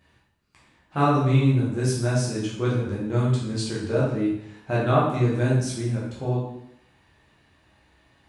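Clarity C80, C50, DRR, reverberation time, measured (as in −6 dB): 5.0 dB, 1.5 dB, −7.0 dB, 0.80 s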